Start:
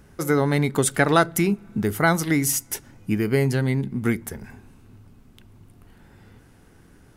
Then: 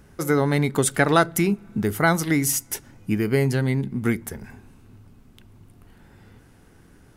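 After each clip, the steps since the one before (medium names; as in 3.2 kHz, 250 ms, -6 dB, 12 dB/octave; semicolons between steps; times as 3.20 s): no audible change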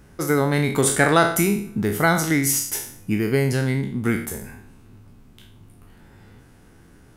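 spectral sustain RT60 0.54 s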